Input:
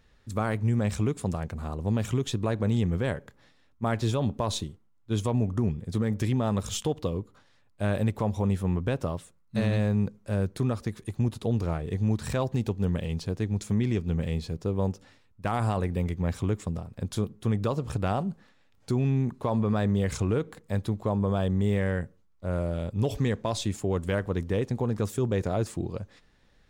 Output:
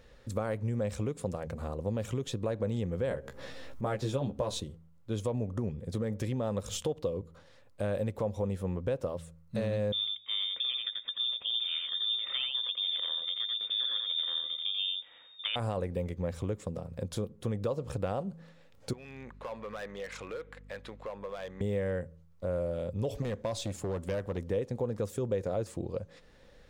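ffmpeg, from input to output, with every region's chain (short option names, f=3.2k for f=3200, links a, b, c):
-filter_complex "[0:a]asettb=1/sr,asplit=3[a][b][c];[a]atrim=end=3.094[d];[b]atrim=start=3.09:end=4.6,asetpts=PTS-STARTPTS,afade=t=in:d=0.004:c=qsin,afade=t=out:st=1.506:d=0.004:c=qsin,asplit=2[e][f];[f]adelay=15,volume=-2.5dB[g];[e][g]amix=inputs=2:normalize=0,atrim=end_sample=66591,acompressor=mode=upward:threshold=-33dB:ratio=2.5:attack=3.2:release=140:knee=2.83:detection=peak[h];[c]atrim=start=4.596[i];[d][h]acrossfade=d=0.004:c1=hsin:c2=qsin[j];[j][i]acrossfade=d=0.004:c1=qsin:c2=hsin,asettb=1/sr,asplit=3[k][l][m];[k]atrim=end=9.924[n];[l]atrim=start=9.92:end=15.56,asetpts=PTS-STARTPTS,afade=t=in:d=0.004:c=qsin,afade=t=out:st=5.636:d=0.004:c=qsin,lowpass=f=3.1k:t=q:w=0.5098,lowpass=f=3.1k:t=q:w=0.6013,lowpass=f=3.1k:t=q:w=0.9,lowpass=f=3.1k:t=q:w=2.563,afreqshift=-3700,aecho=1:1:86:0.631,atrim=end_sample=248724[o];[m]atrim=start=15.556[p];[n][o]acrossfade=d=0.004:c1=hsin:c2=qsin[q];[q][p]acrossfade=d=0.004:c1=qsin:c2=hsin,asettb=1/sr,asplit=3[r][s][t];[r]atrim=end=18.934[u];[s]atrim=start=18.93:end=21.61,asetpts=PTS-STARTPTS,afade=t=in:d=0.004:c=qsin,afade=t=out:st=2.676:d=0.004:c=qsin,bandpass=f=2k:t=q:w=1.4,aeval=exprs='val(0)+0.00178*(sin(2*PI*50*n/s)+sin(2*PI*2*50*n/s)/2+sin(2*PI*3*50*n/s)/3+sin(2*PI*4*50*n/s)/4+sin(2*PI*5*50*n/s)/5)':c=same,asoftclip=type=hard:threshold=-38dB[v];[t]atrim=start=21.606[w];[u][v]acrossfade=d=0.004:c1=hsin:c2=qsin[x];[x][w]acrossfade=d=0.004:c1=qsin:c2=hsin,asettb=1/sr,asplit=3[y][z][aa];[y]atrim=end=23.224[ab];[z]atrim=start=23.22:end=24.38,asetpts=PTS-STARTPTS,afade=t=in:d=0.004:c=qsin,afade=t=out:st=1.156:d=0.004:c=qsin,equalizer=f=470:w=5.8:g=-5,asoftclip=type=hard:threshold=-25.5dB[ac];[aa]atrim=start=24.376[ad];[ab][ac]acrossfade=d=0.004:c1=hsin:c2=qsin[ae];[ae][ad]acrossfade=d=0.004:c1=qsin:c2=hsin,equalizer=f=520:t=o:w=0.35:g=12.5,bandreject=f=82.09:t=h:w=4,bandreject=f=164.18:t=h:w=4,acompressor=threshold=-44dB:ratio=2,volume=4dB"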